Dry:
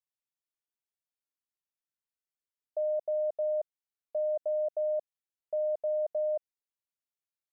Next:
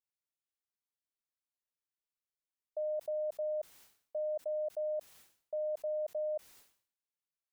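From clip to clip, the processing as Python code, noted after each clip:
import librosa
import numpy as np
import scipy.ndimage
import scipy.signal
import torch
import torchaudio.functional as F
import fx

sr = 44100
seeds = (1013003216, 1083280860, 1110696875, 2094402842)

y = fx.sustainer(x, sr, db_per_s=110.0)
y = y * 10.0 ** (-5.5 / 20.0)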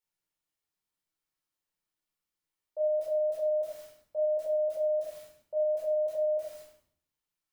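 y = fx.room_shoebox(x, sr, seeds[0], volume_m3=700.0, walls='furnished', distance_m=4.4)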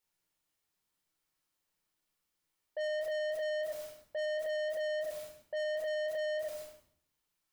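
y = 10.0 ** (-38.5 / 20.0) * np.tanh(x / 10.0 ** (-38.5 / 20.0))
y = y * 10.0 ** (5.0 / 20.0)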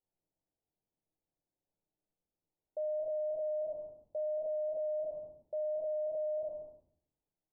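y = scipy.signal.sosfilt(scipy.signal.butter(6, 790.0, 'lowpass', fs=sr, output='sos'), x)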